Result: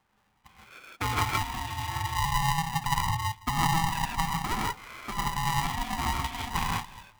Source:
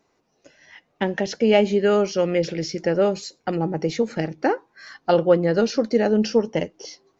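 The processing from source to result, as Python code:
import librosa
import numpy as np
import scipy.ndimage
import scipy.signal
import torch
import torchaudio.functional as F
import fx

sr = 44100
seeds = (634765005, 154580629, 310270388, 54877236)

y = fx.envelope_sharpen(x, sr, power=2.0, at=(2.02, 4.44))
y = fx.over_compress(y, sr, threshold_db=-21.0, ratio=-0.5)
y = fx.brickwall_bandpass(y, sr, low_hz=230.0, high_hz=3200.0)
y = fx.echo_feedback(y, sr, ms=167, feedback_pct=41, wet_db=-23)
y = fx.rev_gated(y, sr, seeds[0], gate_ms=190, shape='rising', drr_db=-2.5)
y = y * np.sign(np.sin(2.0 * np.pi * 490.0 * np.arange(len(y)) / sr))
y = y * librosa.db_to_amplitude(-7.5)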